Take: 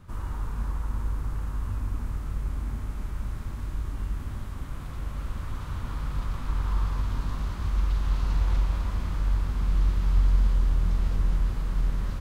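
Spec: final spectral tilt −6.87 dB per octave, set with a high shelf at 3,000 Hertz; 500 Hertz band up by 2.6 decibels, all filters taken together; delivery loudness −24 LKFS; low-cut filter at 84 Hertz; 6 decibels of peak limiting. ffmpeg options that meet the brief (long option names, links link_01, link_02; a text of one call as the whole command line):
ffmpeg -i in.wav -af "highpass=84,equalizer=frequency=500:width_type=o:gain=3.5,highshelf=frequency=3000:gain=-7,volume=14.5dB,alimiter=limit=-12dB:level=0:latency=1" out.wav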